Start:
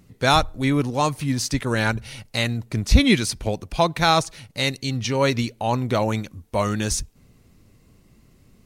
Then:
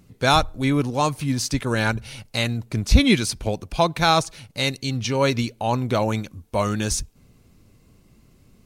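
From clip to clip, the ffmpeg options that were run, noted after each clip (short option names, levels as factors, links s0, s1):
-af "bandreject=f=1900:w=14"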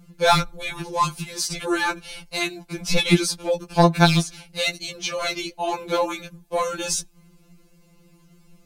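-af "aeval=exprs='clip(val(0),-1,0.211)':c=same,afftfilt=real='re*2.83*eq(mod(b,8),0)':imag='im*2.83*eq(mod(b,8),0)':win_size=2048:overlap=0.75,volume=1.5"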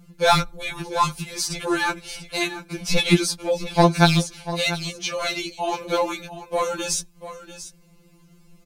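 -af "aecho=1:1:691:0.211"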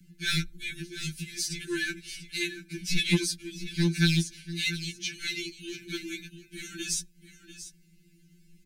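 -filter_complex "[0:a]asuperstop=centerf=740:order=20:qfactor=0.63,acrossover=split=250|1100[s0][s1][s2];[s1]asoftclip=type=tanh:threshold=0.0794[s3];[s0][s3][s2]amix=inputs=3:normalize=0,volume=0.531"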